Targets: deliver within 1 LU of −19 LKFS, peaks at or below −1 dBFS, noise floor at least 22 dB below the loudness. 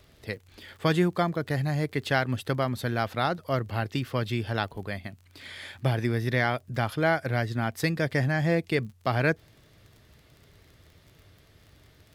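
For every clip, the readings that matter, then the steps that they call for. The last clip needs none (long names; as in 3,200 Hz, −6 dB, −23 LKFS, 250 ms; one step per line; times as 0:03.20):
crackle rate 32 per second; integrated loudness −28.0 LKFS; sample peak −10.5 dBFS; target loudness −19.0 LKFS
→ click removal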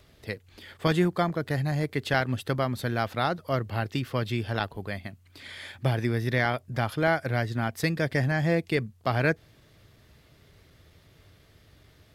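crackle rate 0.082 per second; integrated loudness −28.0 LKFS; sample peak −10.5 dBFS; target loudness −19.0 LKFS
→ level +9 dB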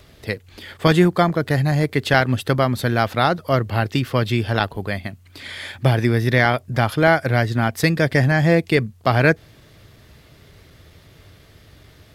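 integrated loudness −19.0 LKFS; sample peak −1.5 dBFS; background noise floor −50 dBFS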